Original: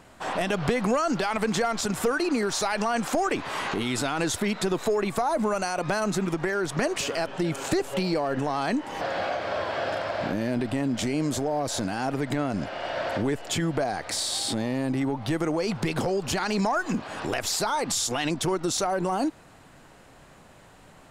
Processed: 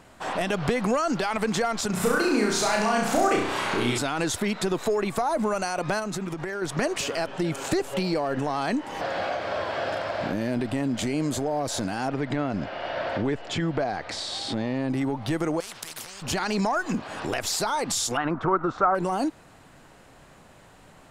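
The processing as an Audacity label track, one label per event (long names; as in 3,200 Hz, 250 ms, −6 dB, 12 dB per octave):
1.900000	3.980000	flutter between parallel walls apart 5.7 metres, dies away in 0.69 s
5.990000	6.620000	downward compressor, threshold −27 dBFS
10.970000	11.570000	notch filter 5,500 Hz
12.080000	14.900000	low-pass filter 4,500 Hz
15.600000	16.220000	every bin compressed towards the loudest bin 10 to 1
18.170000	18.950000	low-pass with resonance 1,300 Hz, resonance Q 4.5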